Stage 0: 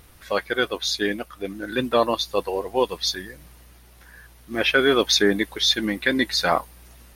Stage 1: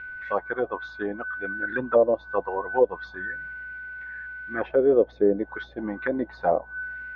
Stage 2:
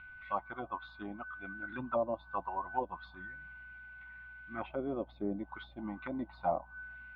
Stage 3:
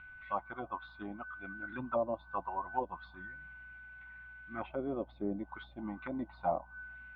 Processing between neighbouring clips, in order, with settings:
steady tone 1,500 Hz −34 dBFS; envelope-controlled low-pass 530–2,500 Hz down, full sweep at −15.5 dBFS; level −6.5 dB
phaser with its sweep stopped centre 1,700 Hz, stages 6; level −5 dB
high-frequency loss of the air 98 metres; Opus 64 kbit/s 48,000 Hz

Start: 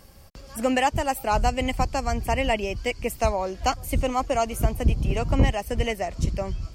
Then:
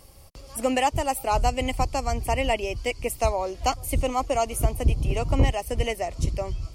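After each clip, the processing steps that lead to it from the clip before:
thirty-one-band graphic EQ 200 Hz −11 dB, 1,600 Hz −9 dB, 10,000 Hz +7 dB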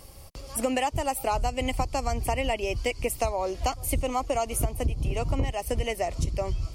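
downward compressor 6 to 1, threshold −26 dBFS, peak gain reduction 12 dB
level +3 dB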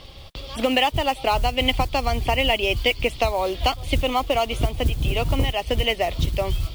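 low-pass with resonance 3,500 Hz, resonance Q 5.7
noise that follows the level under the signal 23 dB
level +5 dB

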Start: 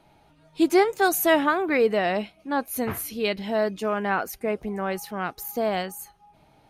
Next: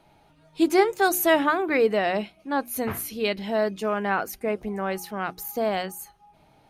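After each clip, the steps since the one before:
mains-hum notches 60/120/180/240/300/360 Hz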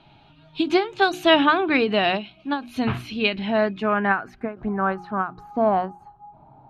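low-pass filter sweep 3,000 Hz → 930 Hz, 0:02.85–0:06.03
thirty-one-band graphic EQ 125 Hz +11 dB, 250 Hz +4 dB, 500 Hz −10 dB, 2,000 Hz −8 dB, 4,000 Hz +6 dB
every ending faded ahead of time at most 170 dB per second
level +4 dB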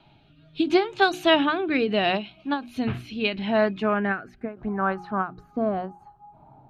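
rotating-speaker cabinet horn 0.75 Hz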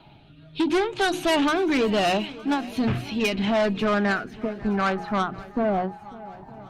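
soft clipping −24.5 dBFS, distortion −7 dB
feedback echo with a long and a short gap by turns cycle 914 ms, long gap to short 1.5 to 1, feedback 37%, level −19.5 dB
level +6.5 dB
Opus 32 kbit/s 48,000 Hz

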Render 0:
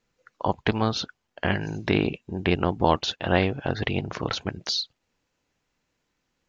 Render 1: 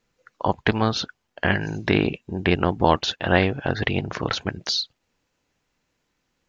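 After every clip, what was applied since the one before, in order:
dynamic equaliser 1,700 Hz, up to +4 dB, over −44 dBFS, Q 2.7
level +2.5 dB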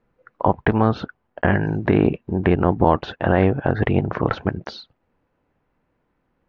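one scale factor per block 7 bits
low-pass filter 1,300 Hz 12 dB per octave
brickwall limiter −10 dBFS, peak gain reduction 7 dB
level +6.5 dB

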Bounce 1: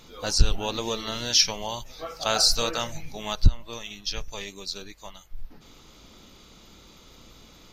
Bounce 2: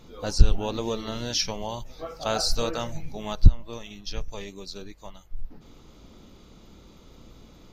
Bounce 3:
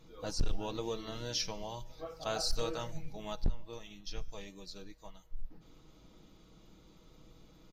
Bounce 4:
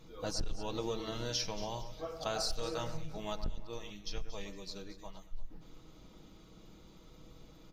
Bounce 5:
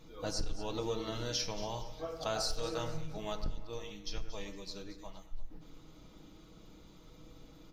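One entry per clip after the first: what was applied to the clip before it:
tilt shelving filter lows +5.5 dB; level −2 dB
comb filter 6.3 ms, depth 47%; hard clipping −13.5 dBFS, distortion −5 dB; tuned comb filter 120 Hz, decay 1.3 s, harmonics all, mix 40%; level −5.5 dB
downward compressor 6 to 1, threshold −34 dBFS, peak gain reduction 9 dB; on a send: delay that swaps between a low-pass and a high-pass 115 ms, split 2,300 Hz, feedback 59%, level −10 dB; on the sum: level +2.5 dB
feedback delay network reverb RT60 0.86 s, low-frequency decay 0.8×, high-frequency decay 0.6×, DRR 10 dB

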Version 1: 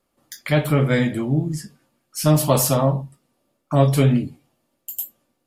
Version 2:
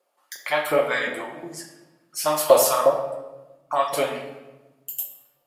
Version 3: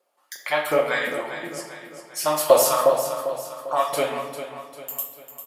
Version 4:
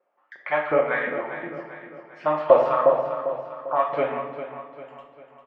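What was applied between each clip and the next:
auto-filter high-pass saw up 2.8 Hz 480–1,600 Hz; rectangular room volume 630 cubic metres, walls mixed, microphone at 0.94 metres; level −2 dB
repeating echo 398 ms, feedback 46%, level −10.5 dB
low-pass filter 2,200 Hz 24 dB per octave

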